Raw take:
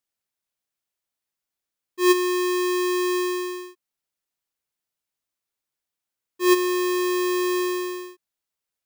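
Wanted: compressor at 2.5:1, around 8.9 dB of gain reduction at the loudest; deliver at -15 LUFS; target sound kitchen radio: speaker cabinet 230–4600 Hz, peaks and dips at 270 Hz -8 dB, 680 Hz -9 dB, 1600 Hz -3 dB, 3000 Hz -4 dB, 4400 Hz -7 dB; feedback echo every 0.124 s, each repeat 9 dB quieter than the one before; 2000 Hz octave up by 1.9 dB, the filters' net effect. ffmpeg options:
-af "equalizer=f=2k:t=o:g=4.5,acompressor=threshold=-28dB:ratio=2.5,highpass=230,equalizer=f=270:t=q:w=4:g=-8,equalizer=f=680:t=q:w=4:g=-9,equalizer=f=1.6k:t=q:w=4:g=-3,equalizer=f=3k:t=q:w=4:g=-4,equalizer=f=4.4k:t=q:w=4:g=-7,lowpass=f=4.6k:w=0.5412,lowpass=f=4.6k:w=1.3066,aecho=1:1:124|248|372|496:0.355|0.124|0.0435|0.0152,volume=15.5dB"

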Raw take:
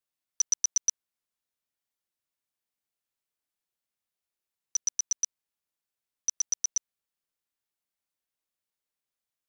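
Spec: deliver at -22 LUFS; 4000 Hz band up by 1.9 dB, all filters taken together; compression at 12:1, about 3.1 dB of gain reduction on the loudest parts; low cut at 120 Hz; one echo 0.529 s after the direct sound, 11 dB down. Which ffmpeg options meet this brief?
-af "highpass=120,equalizer=f=4k:t=o:g=3,acompressor=threshold=-24dB:ratio=12,aecho=1:1:529:0.282,volume=10dB"

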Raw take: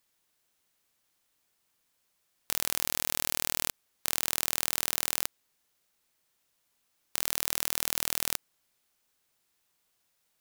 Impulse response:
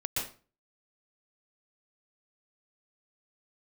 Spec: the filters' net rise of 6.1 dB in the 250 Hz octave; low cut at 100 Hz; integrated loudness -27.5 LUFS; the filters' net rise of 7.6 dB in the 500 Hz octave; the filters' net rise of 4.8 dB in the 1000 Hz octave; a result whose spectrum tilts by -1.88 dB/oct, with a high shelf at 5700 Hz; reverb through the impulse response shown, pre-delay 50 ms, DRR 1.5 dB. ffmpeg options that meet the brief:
-filter_complex "[0:a]highpass=100,equalizer=f=250:t=o:g=5.5,equalizer=f=500:t=o:g=7,equalizer=f=1k:t=o:g=4,highshelf=f=5.7k:g=-5,asplit=2[a][b];[1:a]atrim=start_sample=2205,adelay=50[c];[b][c]afir=irnorm=-1:irlink=0,volume=-7dB[d];[a][d]amix=inputs=2:normalize=0,volume=3dB"

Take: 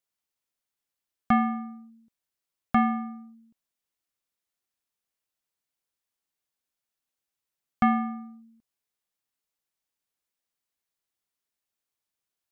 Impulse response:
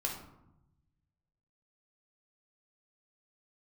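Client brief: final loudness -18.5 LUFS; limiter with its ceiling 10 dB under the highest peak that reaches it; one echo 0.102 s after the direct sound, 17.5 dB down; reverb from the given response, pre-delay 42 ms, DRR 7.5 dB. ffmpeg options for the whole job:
-filter_complex "[0:a]alimiter=limit=-24dB:level=0:latency=1,aecho=1:1:102:0.133,asplit=2[a][b];[1:a]atrim=start_sample=2205,adelay=42[c];[b][c]afir=irnorm=-1:irlink=0,volume=-10.5dB[d];[a][d]amix=inputs=2:normalize=0,volume=14dB"

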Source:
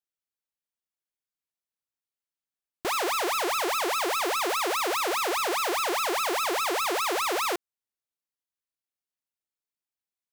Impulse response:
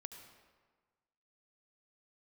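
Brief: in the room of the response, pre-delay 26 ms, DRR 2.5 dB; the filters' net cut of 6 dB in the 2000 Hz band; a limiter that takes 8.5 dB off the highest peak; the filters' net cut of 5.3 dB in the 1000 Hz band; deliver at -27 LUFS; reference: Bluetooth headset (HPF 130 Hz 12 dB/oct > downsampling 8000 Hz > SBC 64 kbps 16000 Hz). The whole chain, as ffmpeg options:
-filter_complex "[0:a]equalizer=f=1k:t=o:g=-5,equalizer=f=2k:t=o:g=-6.5,alimiter=level_in=5.5dB:limit=-24dB:level=0:latency=1,volume=-5.5dB,asplit=2[a][b];[1:a]atrim=start_sample=2205,adelay=26[c];[b][c]afir=irnorm=-1:irlink=0,volume=2dB[d];[a][d]amix=inputs=2:normalize=0,highpass=130,aresample=8000,aresample=44100,volume=9.5dB" -ar 16000 -c:a sbc -b:a 64k

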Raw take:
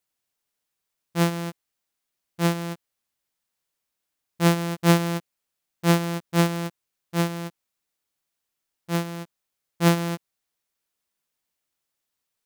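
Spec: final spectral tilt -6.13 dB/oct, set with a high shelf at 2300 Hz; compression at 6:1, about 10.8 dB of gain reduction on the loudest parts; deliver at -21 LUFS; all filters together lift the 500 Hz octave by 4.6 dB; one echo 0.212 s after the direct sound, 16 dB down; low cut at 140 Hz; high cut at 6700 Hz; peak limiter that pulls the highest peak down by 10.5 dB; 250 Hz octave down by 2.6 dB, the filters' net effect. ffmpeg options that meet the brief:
-af "highpass=140,lowpass=6.7k,equalizer=f=250:t=o:g=-6.5,equalizer=f=500:t=o:g=8,highshelf=f=2.3k:g=-8,acompressor=threshold=-24dB:ratio=6,alimiter=level_in=1dB:limit=-24dB:level=0:latency=1,volume=-1dB,aecho=1:1:212:0.158,volume=17dB"

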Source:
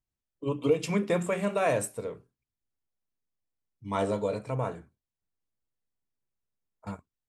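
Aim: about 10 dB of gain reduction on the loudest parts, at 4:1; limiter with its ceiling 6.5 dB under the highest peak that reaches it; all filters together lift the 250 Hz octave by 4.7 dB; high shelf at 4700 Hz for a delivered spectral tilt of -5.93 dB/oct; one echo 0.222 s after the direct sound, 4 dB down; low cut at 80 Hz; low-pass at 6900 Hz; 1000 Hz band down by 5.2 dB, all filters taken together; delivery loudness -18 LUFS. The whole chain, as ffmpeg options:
-af "highpass=80,lowpass=6.9k,equalizer=f=250:t=o:g=7,equalizer=f=1k:t=o:g=-8.5,highshelf=f=4.7k:g=6,acompressor=threshold=-30dB:ratio=4,alimiter=level_in=3.5dB:limit=-24dB:level=0:latency=1,volume=-3.5dB,aecho=1:1:222:0.631,volume=19dB"

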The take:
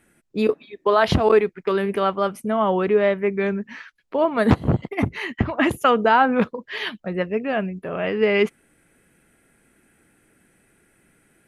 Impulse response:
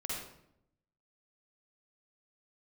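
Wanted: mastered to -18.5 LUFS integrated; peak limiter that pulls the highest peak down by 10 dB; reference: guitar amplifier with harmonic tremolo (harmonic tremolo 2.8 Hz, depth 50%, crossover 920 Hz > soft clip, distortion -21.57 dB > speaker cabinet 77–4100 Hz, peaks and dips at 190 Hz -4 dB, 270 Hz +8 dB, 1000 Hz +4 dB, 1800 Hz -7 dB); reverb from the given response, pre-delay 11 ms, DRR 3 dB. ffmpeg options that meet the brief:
-filter_complex "[0:a]alimiter=limit=-12dB:level=0:latency=1,asplit=2[a][b];[1:a]atrim=start_sample=2205,adelay=11[c];[b][c]afir=irnorm=-1:irlink=0,volume=-5dB[d];[a][d]amix=inputs=2:normalize=0,acrossover=split=920[e][f];[e]aeval=exprs='val(0)*(1-0.5/2+0.5/2*cos(2*PI*2.8*n/s))':c=same[g];[f]aeval=exprs='val(0)*(1-0.5/2-0.5/2*cos(2*PI*2.8*n/s))':c=same[h];[g][h]amix=inputs=2:normalize=0,asoftclip=threshold=-12.5dB,highpass=77,equalizer=f=190:t=q:w=4:g=-4,equalizer=f=270:t=q:w=4:g=8,equalizer=f=1k:t=q:w=4:g=4,equalizer=f=1.8k:t=q:w=4:g=-7,lowpass=f=4.1k:w=0.5412,lowpass=f=4.1k:w=1.3066,volume=5.5dB"

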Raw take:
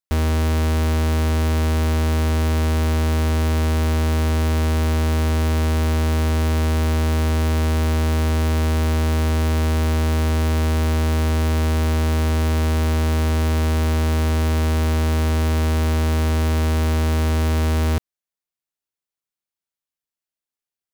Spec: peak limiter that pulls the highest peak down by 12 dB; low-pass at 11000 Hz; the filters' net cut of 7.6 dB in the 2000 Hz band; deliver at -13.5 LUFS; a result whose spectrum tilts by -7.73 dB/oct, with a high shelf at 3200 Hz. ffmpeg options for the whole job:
-af "lowpass=11k,equalizer=f=2k:t=o:g=-9,highshelf=f=3.2k:g=-3.5,volume=19dB,alimiter=limit=-10.5dB:level=0:latency=1"

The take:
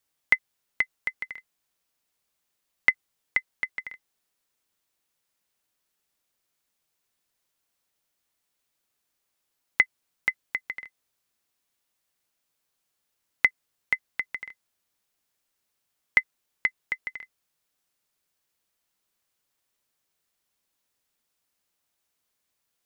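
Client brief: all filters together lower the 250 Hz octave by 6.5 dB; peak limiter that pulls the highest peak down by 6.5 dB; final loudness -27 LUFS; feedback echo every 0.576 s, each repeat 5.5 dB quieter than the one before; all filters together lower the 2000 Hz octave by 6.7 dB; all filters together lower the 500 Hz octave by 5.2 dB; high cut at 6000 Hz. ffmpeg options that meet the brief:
-af "lowpass=6k,equalizer=f=250:t=o:g=-7.5,equalizer=f=500:t=o:g=-4.5,equalizer=f=2k:t=o:g=-6.5,alimiter=limit=-15.5dB:level=0:latency=1,aecho=1:1:576|1152|1728|2304|2880|3456|4032:0.531|0.281|0.149|0.079|0.0419|0.0222|0.0118,volume=13.5dB"

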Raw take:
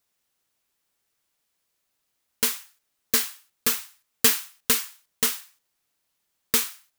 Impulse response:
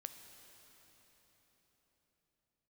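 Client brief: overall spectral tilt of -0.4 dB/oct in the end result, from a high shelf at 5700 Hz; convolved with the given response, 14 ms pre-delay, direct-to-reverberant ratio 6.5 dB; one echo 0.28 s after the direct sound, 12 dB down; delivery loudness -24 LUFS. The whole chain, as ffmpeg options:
-filter_complex "[0:a]highshelf=f=5.7k:g=-3,aecho=1:1:280:0.251,asplit=2[a][b];[1:a]atrim=start_sample=2205,adelay=14[c];[b][c]afir=irnorm=-1:irlink=0,volume=-2dB[d];[a][d]amix=inputs=2:normalize=0,volume=1dB"

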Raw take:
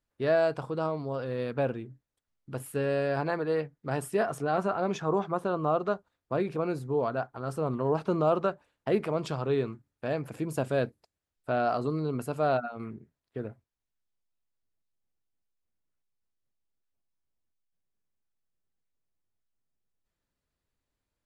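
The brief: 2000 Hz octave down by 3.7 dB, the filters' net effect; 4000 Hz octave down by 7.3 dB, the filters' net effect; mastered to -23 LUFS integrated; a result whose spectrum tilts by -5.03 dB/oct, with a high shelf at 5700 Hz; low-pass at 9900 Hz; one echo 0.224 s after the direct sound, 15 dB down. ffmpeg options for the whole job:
-af "lowpass=9.9k,equalizer=f=2k:t=o:g=-4,equalizer=f=4k:t=o:g=-9,highshelf=f=5.7k:g=3,aecho=1:1:224:0.178,volume=7.5dB"

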